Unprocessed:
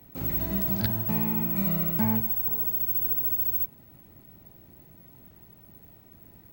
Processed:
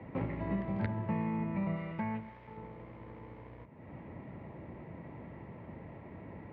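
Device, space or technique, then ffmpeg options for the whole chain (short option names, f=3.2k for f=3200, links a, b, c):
bass amplifier: -filter_complex "[0:a]acompressor=threshold=-40dB:ratio=3,highpass=71,equalizer=f=530:t=q:w=4:g=6,equalizer=f=980:t=q:w=4:g=6,equalizer=f=1.5k:t=q:w=4:g=-4,equalizer=f=2.1k:t=q:w=4:g=7,lowpass=f=2.3k:w=0.5412,lowpass=f=2.3k:w=1.3066,asettb=1/sr,asplit=3[a][b][c];[a]atrim=end=1.764[d];[b]atrim=start=1.76:end=2.57,asetpts=PTS-STARTPTS,afade=t=in:d=0.004:c=qsin,afade=t=out:st=0.806:d=0.004:c=qsin,tiltshelf=f=1.4k:g=-5[e];[c]atrim=start=2.566[f];[d][e]acrossfade=d=0.004:c1=hsin:c2=qsin[g];[g][f]acrossfade=d=0.004:c1=qsin:c2=hsin,volume=7.5dB"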